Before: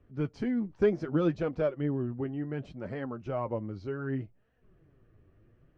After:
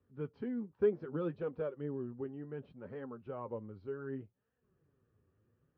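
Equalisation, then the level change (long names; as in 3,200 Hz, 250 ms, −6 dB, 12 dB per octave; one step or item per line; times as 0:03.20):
loudspeaker in its box 110–4,000 Hz, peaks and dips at 130 Hz −5 dB, 190 Hz −4 dB, 320 Hz −9 dB, 660 Hz −10 dB, 2,100 Hz −6 dB
high-shelf EQ 2,900 Hz −12 dB
dynamic equaliser 420 Hz, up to +5 dB, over −47 dBFS, Q 2
−6.0 dB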